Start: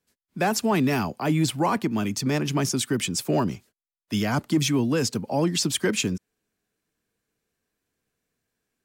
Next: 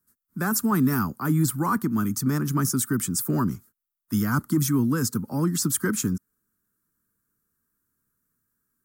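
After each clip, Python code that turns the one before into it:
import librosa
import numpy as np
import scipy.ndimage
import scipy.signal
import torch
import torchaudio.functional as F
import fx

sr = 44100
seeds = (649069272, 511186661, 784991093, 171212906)

y = fx.curve_eq(x, sr, hz=(260.0, 680.0, 1300.0, 2600.0, 14000.0), db=(0, -17, 5, -20, 11))
y = y * librosa.db_to_amplitude(2.0)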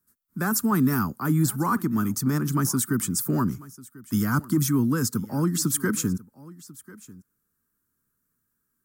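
y = x + 10.0 ** (-20.5 / 20.0) * np.pad(x, (int(1043 * sr / 1000.0), 0))[:len(x)]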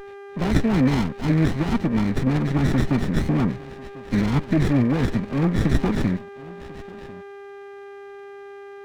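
y = fx.freq_compress(x, sr, knee_hz=1100.0, ratio=4.0)
y = fx.dmg_buzz(y, sr, base_hz=400.0, harmonics=4, level_db=-42.0, tilt_db=-5, odd_only=False)
y = fx.running_max(y, sr, window=33)
y = y * librosa.db_to_amplitude(3.5)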